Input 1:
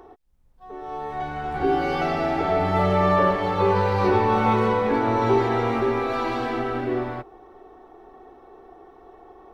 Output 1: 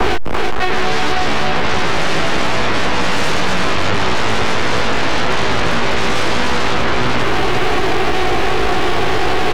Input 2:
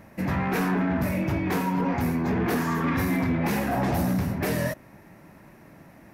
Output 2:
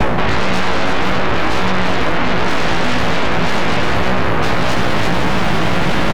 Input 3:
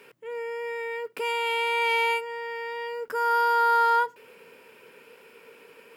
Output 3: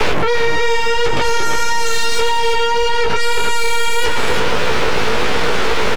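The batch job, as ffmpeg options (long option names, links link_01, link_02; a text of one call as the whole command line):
ffmpeg -i in.wav -filter_complex "[0:a]aeval=exprs='val(0)+0.5*0.0168*sgn(val(0))':channel_layout=same,adynamicequalizer=threshold=0.0158:dfrequency=650:dqfactor=1.2:tfrequency=650:tqfactor=1.2:attack=5:release=100:ratio=0.375:range=2:mode=cutabove:tftype=bell,lowpass=frequency=1100:poles=1,areverse,acompressor=threshold=-38dB:ratio=5,areverse,aeval=exprs='0.0398*(cos(1*acos(clip(val(0)/0.0398,-1,1)))-cos(1*PI/2))+0.02*(cos(2*acos(clip(val(0)/0.0398,-1,1)))-cos(2*PI/2))+0.00562*(cos(3*acos(clip(val(0)/0.0398,-1,1)))-cos(3*PI/2))+0.00891*(cos(4*acos(clip(val(0)/0.0398,-1,1)))-cos(4*PI/2))+0.0141*(cos(6*acos(clip(val(0)/0.0398,-1,1)))-cos(6*PI/2))':channel_layout=same,aeval=exprs='0.0473*sin(PI/2*5.62*val(0)/0.0473)':channel_layout=same,asplit=2[link_01][link_02];[link_02]aecho=0:1:337:0.562[link_03];[link_01][link_03]amix=inputs=2:normalize=0,flanger=delay=16:depth=2.7:speed=1.7,aemphasis=mode=reproduction:type=75kf,apsyclip=32dB,acrossover=split=170|470[link_04][link_05][link_06];[link_04]acompressor=threshold=-10dB:ratio=4[link_07];[link_05]acompressor=threshold=-22dB:ratio=4[link_08];[link_06]acompressor=threshold=-15dB:ratio=4[link_09];[link_07][link_08][link_09]amix=inputs=3:normalize=0,volume=-3dB" out.wav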